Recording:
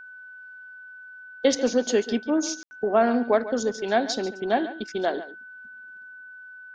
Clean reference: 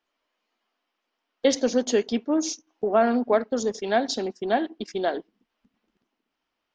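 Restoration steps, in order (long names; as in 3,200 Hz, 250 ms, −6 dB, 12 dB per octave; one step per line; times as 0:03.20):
notch filter 1,500 Hz, Q 30
ambience match 0:02.63–0:02.71
echo removal 141 ms −14.5 dB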